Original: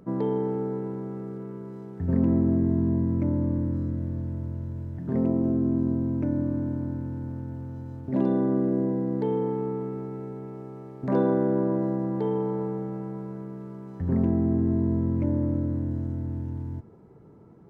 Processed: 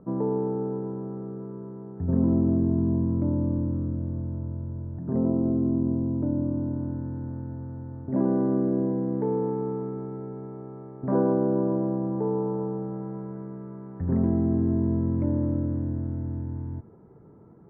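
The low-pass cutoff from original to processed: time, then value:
low-pass 24 dB/octave
5.43 s 1.3 kHz
5.88 s 1.1 kHz
6.52 s 1.1 kHz
7.07 s 1.6 kHz
10.96 s 1.6 kHz
11.37 s 1.3 kHz
12.69 s 1.3 kHz
13.27 s 1.8 kHz

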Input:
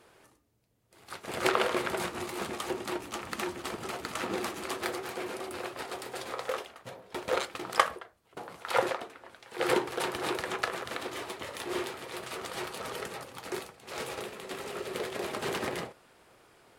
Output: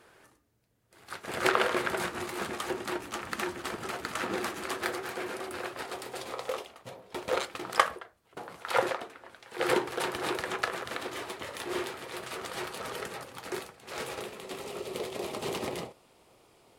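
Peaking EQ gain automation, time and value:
peaking EQ 1.6 kHz 0.58 oct
5.62 s +4.5 dB
6.55 s -7 dB
7.69 s +1.5 dB
14.04 s +1.5 dB
14.83 s -10.5 dB

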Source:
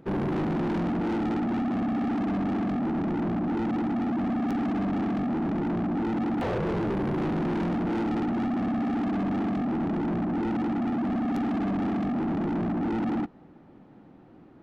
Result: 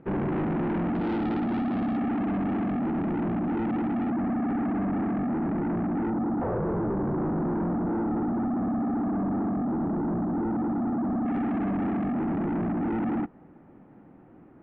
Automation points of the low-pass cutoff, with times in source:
low-pass 24 dB/octave
2.6 kHz
from 0.95 s 4.2 kHz
from 1.97 s 2.8 kHz
from 4.11 s 2.1 kHz
from 6.10 s 1.4 kHz
from 11.26 s 2.4 kHz

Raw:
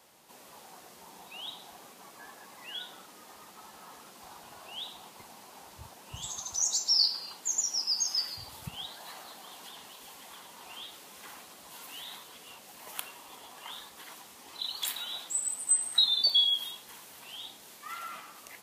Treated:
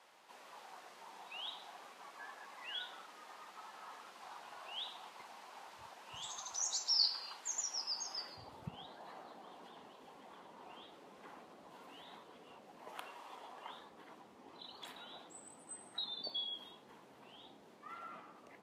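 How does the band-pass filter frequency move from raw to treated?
band-pass filter, Q 0.6
7.62 s 1.4 kHz
8.58 s 360 Hz
12.76 s 360 Hz
13.25 s 890 Hz
13.99 s 300 Hz

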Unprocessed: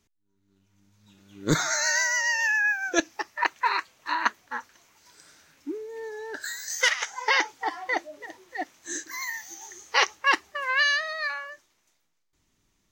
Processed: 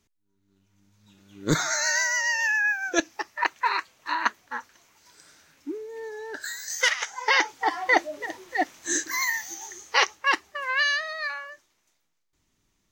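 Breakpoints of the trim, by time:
7.19 s 0 dB
7.97 s +7.5 dB
9.20 s +7.5 dB
10.19 s -1 dB

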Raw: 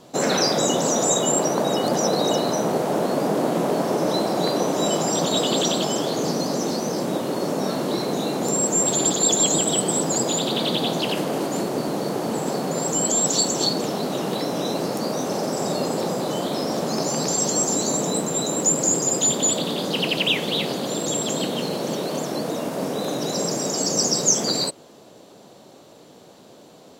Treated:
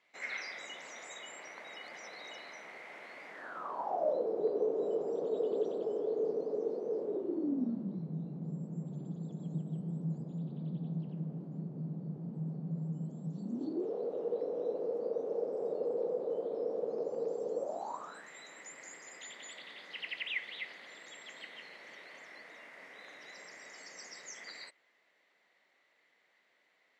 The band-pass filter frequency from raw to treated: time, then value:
band-pass filter, Q 11
3.30 s 2.1 kHz
4.28 s 440 Hz
7.08 s 440 Hz
8.05 s 160 Hz
13.33 s 160 Hz
13.94 s 470 Hz
17.57 s 470 Hz
18.29 s 2 kHz

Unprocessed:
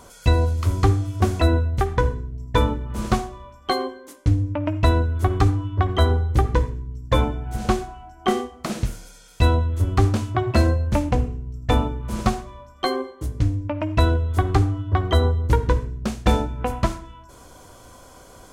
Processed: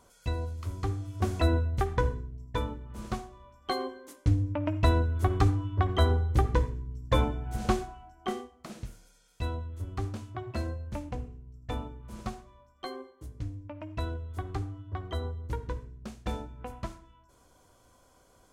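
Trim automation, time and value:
0.85 s -14.5 dB
1.42 s -7 dB
2.16 s -7 dB
2.63 s -13.5 dB
3.28 s -13.5 dB
3.98 s -6 dB
7.82 s -6 dB
8.56 s -16 dB

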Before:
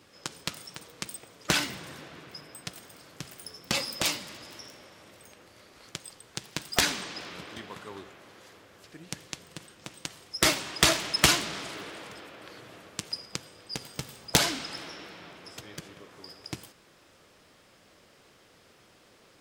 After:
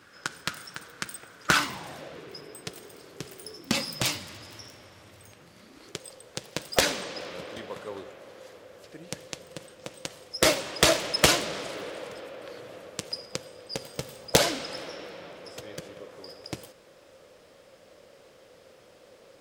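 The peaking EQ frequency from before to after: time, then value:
peaking EQ +13 dB 0.54 oct
1.46 s 1.5 kHz
2.28 s 410 Hz
3.50 s 410 Hz
4.16 s 96 Hz
5.25 s 96 Hz
6.06 s 530 Hz

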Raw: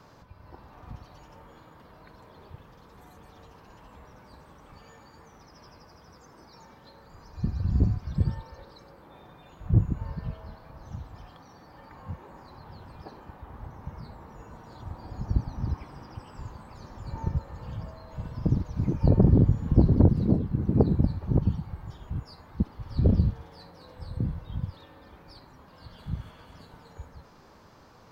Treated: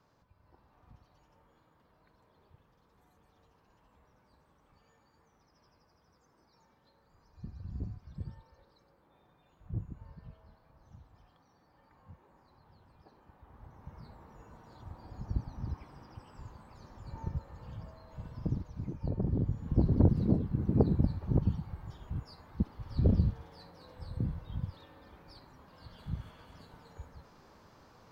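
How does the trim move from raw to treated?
13.07 s -16 dB
14.06 s -8 dB
18.42 s -8 dB
19.13 s -14.5 dB
20.11 s -4.5 dB

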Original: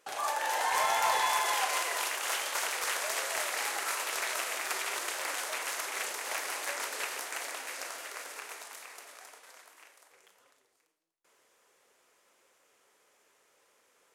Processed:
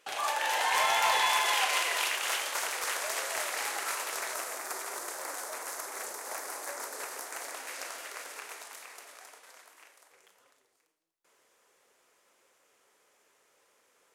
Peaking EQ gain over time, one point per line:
peaking EQ 2.9 kHz 1.2 oct
2.10 s +6.5 dB
2.61 s -1.5 dB
3.92 s -1.5 dB
4.66 s -13.5 dB
6.90 s -13.5 dB
7.50 s -6.5 dB
7.77 s -0.5 dB

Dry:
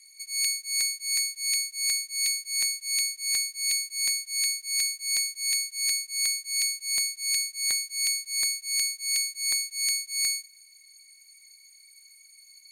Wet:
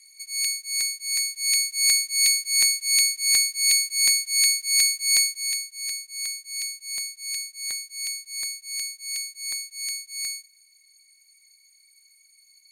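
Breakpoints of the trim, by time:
1.12 s +1 dB
1.78 s +7 dB
5.22 s +7 dB
5.67 s -4 dB

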